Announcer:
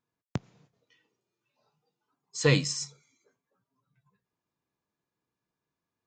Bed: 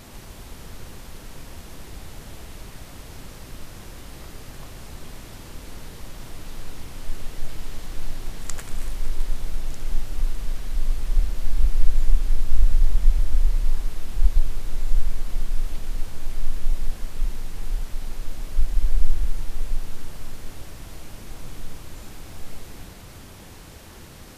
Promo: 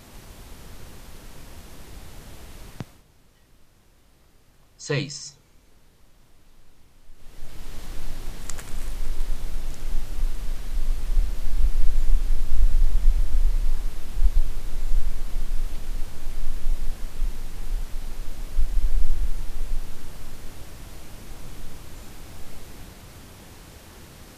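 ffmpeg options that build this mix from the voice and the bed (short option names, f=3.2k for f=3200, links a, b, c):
-filter_complex "[0:a]adelay=2450,volume=-3dB[a];[1:a]volume=13.5dB,afade=t=out:st=2.7:d=0.33:silence=0.177828,afade=t=in:st=7.15:d=0.67:silence=0.149624[b];[a][b]amix=inputs=2:normalize=0"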